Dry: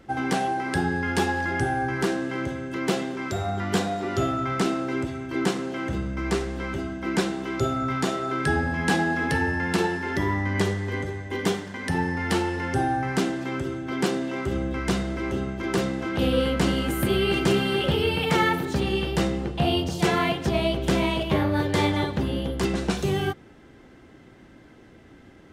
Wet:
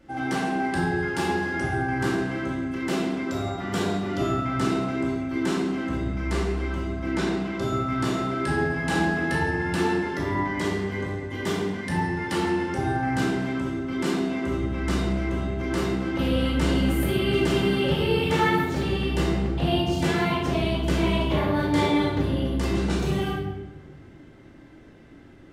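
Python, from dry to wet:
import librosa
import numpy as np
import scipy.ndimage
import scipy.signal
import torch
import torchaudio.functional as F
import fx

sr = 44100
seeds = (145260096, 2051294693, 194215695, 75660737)

y = fx.high_shelf(x, sr, hz=10000.0, db=-11.0, at=(7.11, 7.55))
y = fx.room_shoebox(y, sr, seeds[0], volume_m3=620.0, walls='mixed', distance_m=2.5)
y = y * librosa.db_to_amplitude(-7.0)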